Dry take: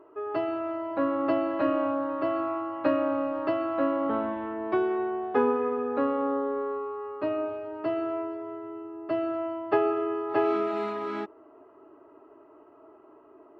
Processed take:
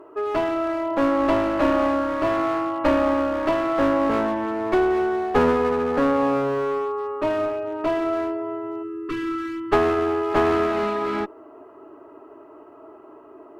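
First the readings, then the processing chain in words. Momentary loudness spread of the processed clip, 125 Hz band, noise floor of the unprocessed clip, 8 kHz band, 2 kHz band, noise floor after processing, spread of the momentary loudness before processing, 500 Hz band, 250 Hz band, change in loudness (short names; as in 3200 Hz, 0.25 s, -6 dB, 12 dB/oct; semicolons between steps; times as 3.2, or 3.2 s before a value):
8 LU, +14.0 dB, -55 dBFS, n/a, +9.5 dB, -46 dBFS, 8 LU, +6.0 dB, +6.0 dB, +6.0 dB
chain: one-sided clip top -31 dBFS; spectral delete 8.83–9.72, 490–1000 Hz; gain +8.5 dB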